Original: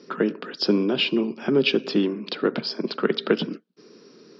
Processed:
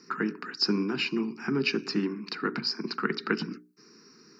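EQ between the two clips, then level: treble shelf 2.6 kHz +11.5 dB; hum notches 60/120/180/240/300/360/420 Hz; static phaser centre 1.4 kHz, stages 4; -2.5 dB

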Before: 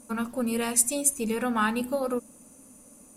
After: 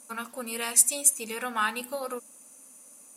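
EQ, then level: high-pass 1.4 kHz 6 dB/octave; +3.0 dB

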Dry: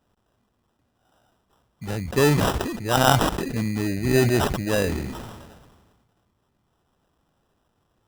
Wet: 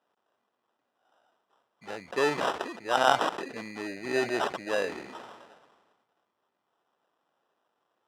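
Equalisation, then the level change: high-pass 500 Hz 12 dB/octave; distance through air 52 m; treble shelf 4.4 kHz -8 dB; -2.0 dB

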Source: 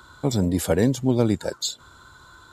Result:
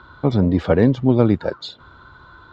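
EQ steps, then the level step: low-pass 4.9 kHz 12 dB/octave; distance through air 260 m; dynamic bell 1.2 kHz, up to +6 dB, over -54 dBFS, Q 5.1; +5.5 dB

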